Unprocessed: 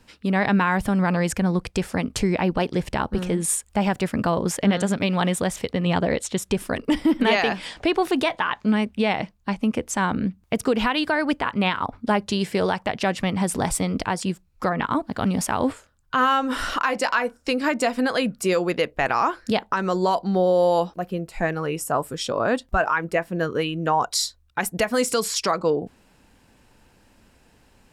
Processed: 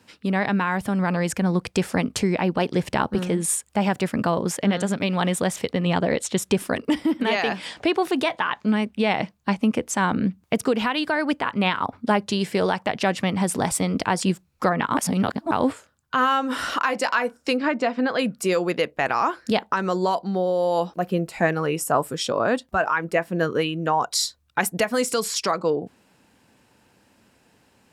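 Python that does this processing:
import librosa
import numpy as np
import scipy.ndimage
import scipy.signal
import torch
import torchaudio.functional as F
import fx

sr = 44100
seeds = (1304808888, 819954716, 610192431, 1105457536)

y = fx.air_absorb(x, sr, metres=180.0, at=(17.57, 18.19))
y = fx.edit(y, sr, fx.reverse_span(start_s=14.97, length_s=0.54), tone=tone)
y = scipy.signal.sosfilt(scipy.signal.butter(2, 110.0, 'highpass', fs=sr, output='sos'), y)
y = fx.rider(y, sr, range_db=10, speed_s=0.5)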